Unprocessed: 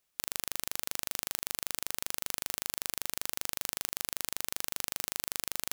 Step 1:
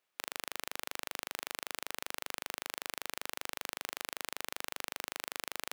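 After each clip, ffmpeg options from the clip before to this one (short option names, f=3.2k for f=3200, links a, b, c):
-af "highpass=f=140:p=1,bass=f=250:g=-9,treble=f=4k:g=-11,volume=2dB"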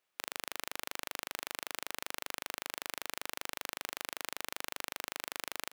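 -filter_complex "[0:a]asplit=2[a][b];[b]adelay=320.7,volume=-23dB,highshelf=f=4k:g=-7.22[c];[a][c]amix=inputs=2:normalize=0"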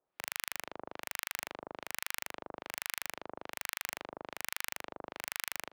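-filter_complex "[0:a]acrossover=split=1000[a][b];[a]aeval=exprs='val(0)*(1-1/2+1/2*cos(2*PI*1.2*n/s))':c=same[c];[b]aeval=exprs='val(0)*(1-1/2-1/2*cos(2*PI*1.2*n/s))':c=same[d];[c][d]amix=inputs=2:normalize=0,acrossover=split=110|1800|4800[e][f][g][h];[h]acrusher=bits=3:mix=0:aa=0.5[i];[e][f][g][i]amix=inputs=4:normalize=0,volume=5.5dB"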